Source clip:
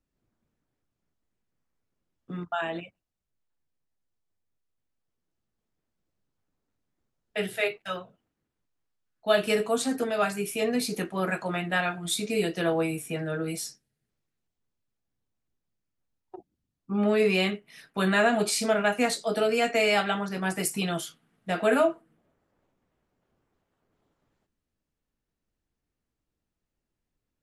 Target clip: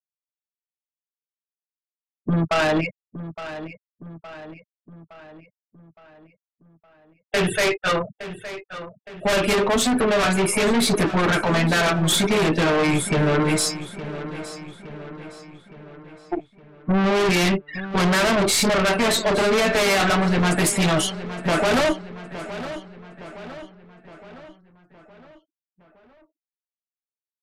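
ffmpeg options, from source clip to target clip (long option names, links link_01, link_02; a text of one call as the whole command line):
ffmpeg -i in.wav -filter_complex "[0:a]afftfilt=real='re*gte(hypot(re,im),0.00794)':imag='im*gte(hypot(re,im),0.00794)':win_size=1024:overlap=0.75,bass=frequency=250:gain=0,treble=frequency=4000:gain=-5,asplit=2[link_01][link_02];[link_02]acompressor=threshold=-31dB:ratio=10,volume=-1.5dB[link_03];[link_01][link_03]amix=inputs=2:normalize=0,aeval=exprs='(tanh(20*val(0)+0.5)-tanh(0.5))/20':channel_layout=same,aeval=exprs='0.075*sin(PI/2*1.78*val(0)/0.075)':channel_layout=same,asetrate=41625,aresample=44100,atempo=1.05946,asplit=2[link_04][link_05];[link_05]adelay=865,lowpass=frequency=4600:poles=1,volume=-13dB,asplit=2[link_06][link_07];[link_07]adelay=865,lowpass=frequency=4600:poles=1,volume=0.53,asplit=2[link_08][link_09];[link_09]adelay=865,lowpass=frequency=4600:poles=1,volume=0.53,asplit=2[link_10][link_11];[link_11]adelay=865,lowpass=frequency=4600:poles=1,volume=0.53,asplit=2[link_12][link_13];[link_13]adelay=865,lowpass=frequency=4600:poles=1,volume=0.53[link_14];[link_06][link_08][link_10][link_12][link_14]amix=inputs=5:normalize=0[link_15];[link_04][link_15]amix=inputs=2:normalize=0,aresample=32000,aresample=44100,volume=7dB" out.wav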